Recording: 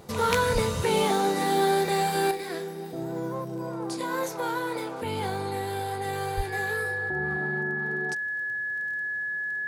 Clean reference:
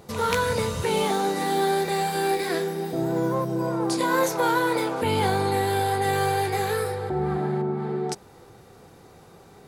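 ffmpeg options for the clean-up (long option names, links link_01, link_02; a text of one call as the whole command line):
ffmpeg -i in.wav -filter_complex "[0:a]adeclick=threshold=4,bandreject=frequency=1700:width=30,asplit=3[link_01][link_02][link_03];[link_01]afade=type=out:start_time=0.53:duration=0.02[link_04];[link_02]highpass=frequency=140:width=0.5412,highpass=frequency=140:width=1.3066,afade=type=in:start_time=0.53:duration=0.02,afade=type=out:start_time=0.65:duration=0.02[link_05];[link_03]afade=type=in:start_time=0.65:duration=0.02[link_06];[link_04][link_05][link_06]amix=inputs=3:normalize=0,asplit=3[link_07][link_08][link_09];[link_07]afade=type=out:start_time=6.36:duration=0.02[link_10];[link_08]highpass=frequency=140:width=0.5412,highpass=frequency=140:width=1.3066,afade=type=in:start_time=6.36:duration=0.02,afade=type=out:start_time=6.48:duration=0.02[link_11];[link_09]afade=type=in:start_time=6.48:duration=0.02[link_12];[link_10][link_11][link_12]amix=inputs=3:normalize=0,asetnsamples=nb_out_samples=441:pad=0,asendcmd='2.31 volume volume 7.5dB',volume=0dB" out.wav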